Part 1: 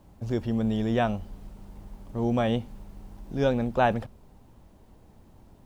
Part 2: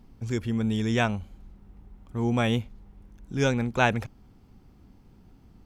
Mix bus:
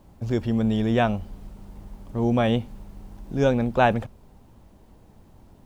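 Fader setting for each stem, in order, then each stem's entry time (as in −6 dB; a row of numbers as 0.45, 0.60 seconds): +2.0, −10.5 decibels; 0.00, 0.00 seconds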